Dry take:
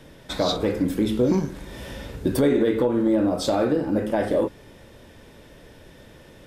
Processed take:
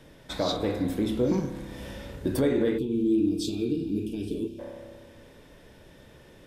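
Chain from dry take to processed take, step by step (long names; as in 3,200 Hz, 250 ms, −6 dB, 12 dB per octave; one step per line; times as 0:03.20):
spring reverb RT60 1.9 s, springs 30 ms, chirp 20 ms, DRR 8.5 dB
gain on a spectral selection 0:02.78–0:04.59, 470–2,300 Hz −29 dB
level −5 dB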